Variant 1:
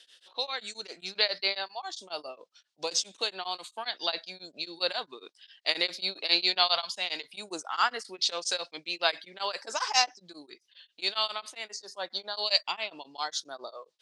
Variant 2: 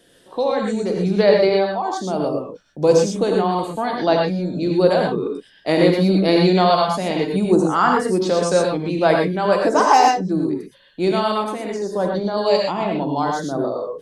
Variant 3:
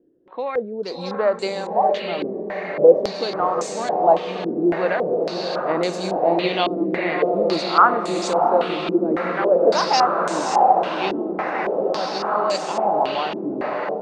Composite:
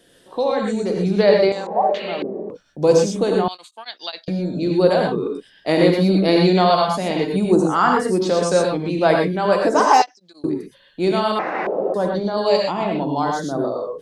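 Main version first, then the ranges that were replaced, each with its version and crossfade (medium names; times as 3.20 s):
2
1.52–2.50 s: from 3
3.48–4.28 s: from 1
10.02–10.44 s: from 1
11.39–11.94 s: from 3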